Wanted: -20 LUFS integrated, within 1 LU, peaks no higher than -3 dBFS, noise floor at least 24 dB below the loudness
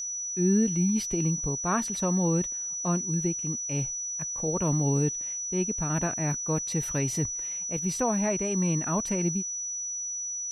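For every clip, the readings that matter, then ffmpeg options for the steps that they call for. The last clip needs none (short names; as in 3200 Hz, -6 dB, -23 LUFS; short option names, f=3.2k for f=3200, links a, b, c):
steady tone 5900 Hz; tone level -31 dBFS; loudness -27.5 LUFS; peak -14.0 dBFS; loudness target -20.0 LUFS
-> -af "bandreject=f=5.9k:w=30"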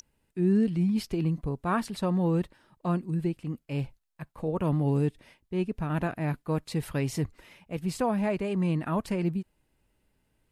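steady tone none; loudness -29.5 LUFS; peak -15.5 dBFS; loudness target -20.0 LUFS
-> -af "volume=9.5dB"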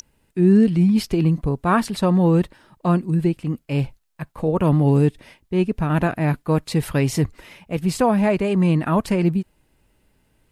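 loudness -20.0 LUFS; peak -6.0 dBFS; noise floor -64 dBFS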